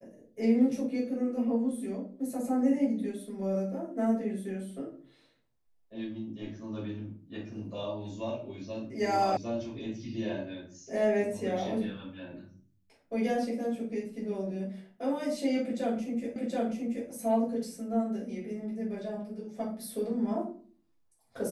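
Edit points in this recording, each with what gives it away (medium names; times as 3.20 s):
9.37 s: sound stops dead
16.36 s: repeat of the last 0.73 s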